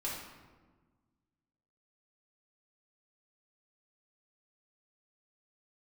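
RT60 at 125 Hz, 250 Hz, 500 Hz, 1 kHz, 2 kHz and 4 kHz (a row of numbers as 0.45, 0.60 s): 2.0, 2.0, 1.5, 1.3, 1.0, 0.80 s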